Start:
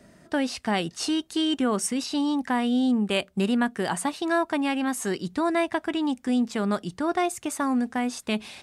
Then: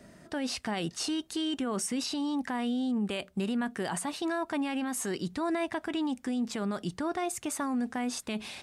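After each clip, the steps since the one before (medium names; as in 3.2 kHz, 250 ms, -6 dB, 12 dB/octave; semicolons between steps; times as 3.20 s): peak limiter -24 dBFS, peak gain reduction 11.5 dB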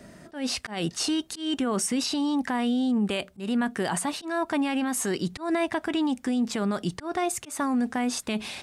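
slow attack 160 ms; trim +5.5 dB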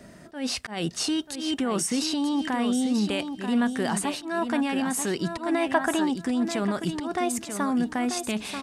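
feedback delay 937 ms, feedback 21%, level -8 dB; time-frequency box 5.74–6.04 s, 550–1900 Hz +8 dB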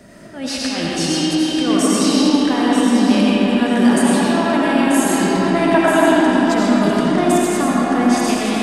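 algorithmic reverb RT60 4.5 s, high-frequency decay 0.55×, pre-delay 45 ms, DRR -7 dB; trim +3.5 dB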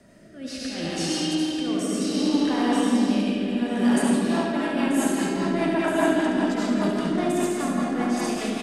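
rotary cabinet horn 0.65 Hz, later 5 Hz, at 3.73 s; delay 71 ms -6.5 dB; trim -7.5 dB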